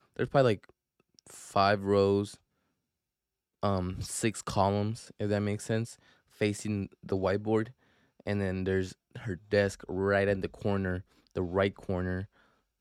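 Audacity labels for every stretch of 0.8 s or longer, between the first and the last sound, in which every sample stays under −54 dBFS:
2.360000	3.630000	silence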